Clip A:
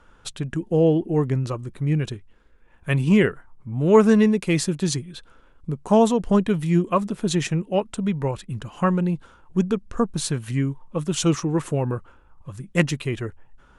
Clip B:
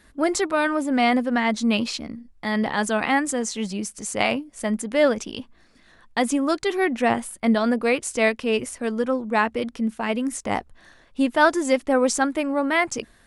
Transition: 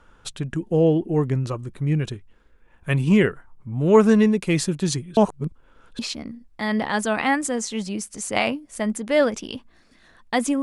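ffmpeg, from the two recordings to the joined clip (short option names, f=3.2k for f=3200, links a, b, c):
-filter_complex "[0:a]apad=whole_dur=10.62,atrim=end=10.62,asplit=2[a][b];[a]atrim=end=5.172[c];[b]atrim=start=5.168:end=5.992,asetpts=PTS-STARTPTS,areverse[d];[1:a]atrim=start=1.828:end=6.46[e];[c][d]acrossfade=d=0.004:c1=hsin:c2=hsin[f];[f][e]acrossfade=d=0.004:c1=hsin:c2=hsin"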